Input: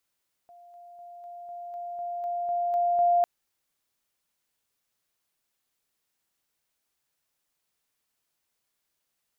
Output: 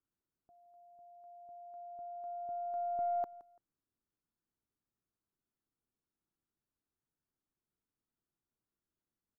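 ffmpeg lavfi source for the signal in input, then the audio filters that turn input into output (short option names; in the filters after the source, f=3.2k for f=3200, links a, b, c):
-f lavfi -i "aevalsrc='pow(10,(-48.5+3*floor(t/0.25))/20)*sin(2*PI*699*t)':d=2.75:s=44100"
-af "firequalizer=gain_entry='entry(340,0);entry(550,-12);entry(1400,-11);entry(2200,-24)':delay=0.05:min_phase=1,aeval=exprs='(tanh(7.94*val(0)+0.25)-tanh(0.25))/7.94':c=same,aecho=1:1:169|338:0.106|0.0286"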